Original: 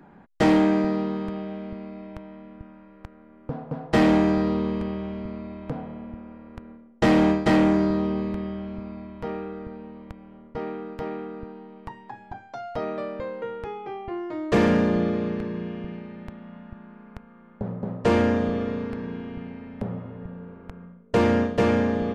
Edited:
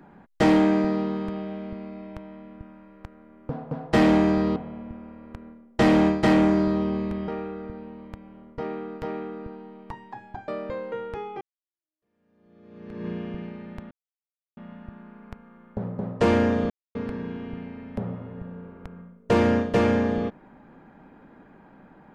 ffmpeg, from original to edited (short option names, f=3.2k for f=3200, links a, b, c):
-filter_complex "[0:a]asplit=8[a][b][c][d][e][f][g][h];[a]atrim=end=4.562[i];[b]atrim=start=5.788:end=8.512[j];[c]atrim=start=9.248:end=12.452[k];[d]atrim=start=12.978:end=13.91,asetpts=PTS-STARTPTS,afade=t=out:st=0.928:d=0.004:c=hsin[l];[e]atrim=start=13.91:end=16.41,asetpts=PTS-STARTPTS,afade=t=in:d=1.66:c=exp,afade=t=out:st=2.496:d=0.004:c=hsin,apad=pad_dur=0.66[m];[f]atrim=start=16.41:end=18.54,asetpts=PTS-STARTPTS,afade=t=in:d=0.004:c=hsin,afade=t=out:st=2.126:d=0.004:c=hsin[n];[g]atrim=start=18.54:end=18.79,asetpts=PTS-STARTPTS,volume=0[o];[h]atrim=start=18.79,asetpts=PTS-STARTPTS,afade=t=in:d=0.004:c=hsin[p];[i][j]acrossfade=d=0.004:c1=hsin:c2=hsin[q];[q][k]acrossfade=d=0.004:c1=hsin:c2=hsin[r];[l][m][n][o][p]concat=n=5:v=0:a=1[s];[r][s]acrossfade=d=0.004:c1=hsin:c2=hsin"